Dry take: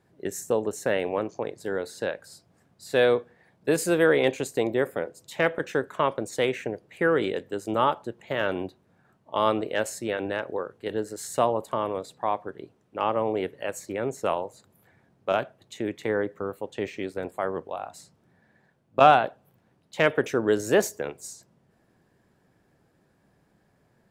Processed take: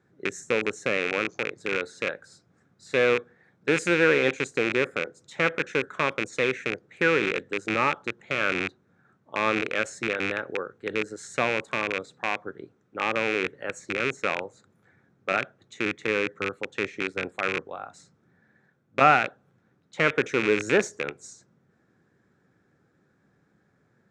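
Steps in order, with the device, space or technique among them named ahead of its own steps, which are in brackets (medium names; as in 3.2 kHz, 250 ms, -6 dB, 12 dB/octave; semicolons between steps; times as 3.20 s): car door speaker with a rattle (rattle on loud lows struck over -38 dBFS, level -12 dBFS; cabinet simulation 89–7000 Hz, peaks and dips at 650 Hz -7 dB, 950 Hz -6 dB, 1.4 kHz +6 dB, 2.9 kHz -8 dB, 4.7 kHz -7 dB)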